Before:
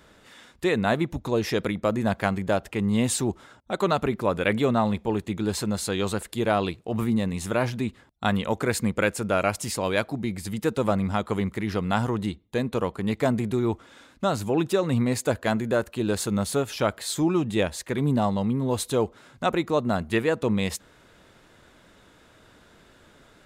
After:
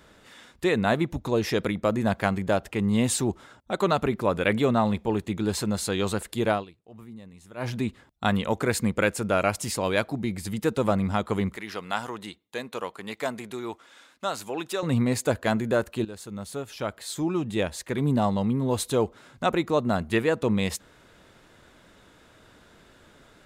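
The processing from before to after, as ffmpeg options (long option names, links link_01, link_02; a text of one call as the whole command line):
ffmpeg -i in.wav -filter_complex "[0:a]asettb=1/sr,asplit=3[link_01][link_02][link_03];[link_01]atrim=end=11.564[link_04];[link_02]atrim=start=11.56:end=14.83,asetpts=PTS-STARTPTS,afade=type=in:duration=0.004:curve=qsin,afade=type=out:start_time=3.266:duration=0.004:curve=qsin,highpass=frequency=960:poles=1[link_05];[link_03]atrim=start=14.826[link_06];[link_04][link_05]acrossfade=duration=0.004:curve1=hsin:curve2=qsin[link_07];[link_07][link_06]acrossfade=duration=0.004:curve1=qsin:curve2=hsin,asplit=4[link_08][link_09][link_10][link_11];[link_08]atrim=end=6.65,asetpts=PTS-STARTPTS,afade=type=out:start_time=6.5:duration=0.15:silence=0.105925[link_12];[link_09]atrim=start=6.65:end=7.56,asetpts=PTS-STARTPTS,volume=-19.5dB[link_13];[link_10]atrim=start=7.56:end=16.05,asetpts=PTS-STARTPTS,afade=type=in:duration=0.15:silence=0.105925,afade=type=out:start_time=8.486:duration=0.004:curve=hsin:silence=0.158489[link_14];[link_11]atrim=start=16.05,asetpts=PTS-STARTPTS,afade=type=in:duration=2.2:silence=0.158489[link_15];[link_12][link_13][link_14][link_15]concat=n=4:v=0:a=1" out.wav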